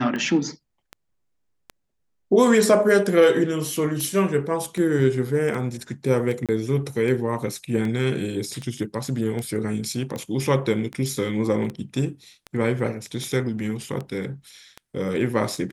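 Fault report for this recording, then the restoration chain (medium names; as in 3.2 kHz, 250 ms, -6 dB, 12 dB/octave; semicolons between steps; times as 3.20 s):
tick 78 rpm -19 dBFS
6.46–6.49 s: dropout 27 ms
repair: de-click; interpolate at 6.46 s, 27 ms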